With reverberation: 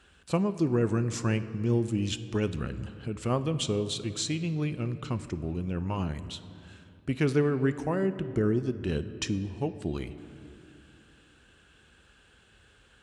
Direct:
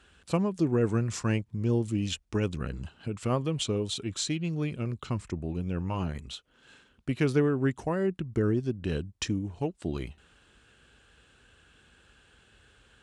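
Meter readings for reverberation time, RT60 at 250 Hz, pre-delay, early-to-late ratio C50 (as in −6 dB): 2.5 s, 3.3 s, 5 ms, 13.0 dB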